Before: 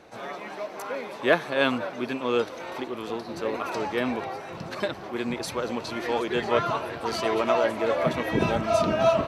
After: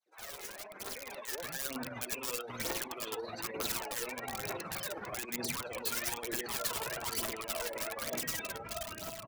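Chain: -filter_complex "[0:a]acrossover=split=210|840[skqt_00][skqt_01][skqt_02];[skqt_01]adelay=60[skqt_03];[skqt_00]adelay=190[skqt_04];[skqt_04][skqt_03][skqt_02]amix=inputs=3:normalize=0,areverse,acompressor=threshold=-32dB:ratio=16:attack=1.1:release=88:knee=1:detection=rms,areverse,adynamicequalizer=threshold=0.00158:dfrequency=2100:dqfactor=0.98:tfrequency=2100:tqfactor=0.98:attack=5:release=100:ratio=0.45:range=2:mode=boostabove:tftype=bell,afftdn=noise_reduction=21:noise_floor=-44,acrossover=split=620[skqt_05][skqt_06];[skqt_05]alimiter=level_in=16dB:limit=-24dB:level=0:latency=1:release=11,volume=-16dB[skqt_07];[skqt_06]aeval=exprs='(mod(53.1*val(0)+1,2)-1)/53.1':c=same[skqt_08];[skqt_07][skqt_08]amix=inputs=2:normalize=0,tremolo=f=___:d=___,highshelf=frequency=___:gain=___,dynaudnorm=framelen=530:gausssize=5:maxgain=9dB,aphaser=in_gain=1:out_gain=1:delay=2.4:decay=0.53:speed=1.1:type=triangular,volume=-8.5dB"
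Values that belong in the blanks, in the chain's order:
19, 0.47, 5700, 11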